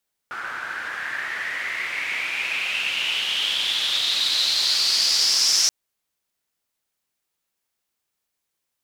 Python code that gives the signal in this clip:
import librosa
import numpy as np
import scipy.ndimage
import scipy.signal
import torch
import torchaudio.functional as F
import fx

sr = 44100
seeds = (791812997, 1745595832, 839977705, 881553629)

y = fx.riser_noise(sr, seeds[0], length_s=5.38, colour='pink', kind='bandpass', start_hz=1400.0, end_hz=5600.0, q=6.2, swell_db=13.5, law='exponential')